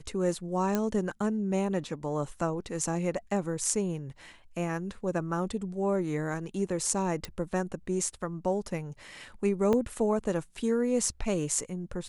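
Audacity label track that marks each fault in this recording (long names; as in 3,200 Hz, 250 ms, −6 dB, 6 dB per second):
0.750000	0.750000	click −14 dBFS
7.250000	7.250000	click
9.730000	9.730000	drop-out 3.4 ms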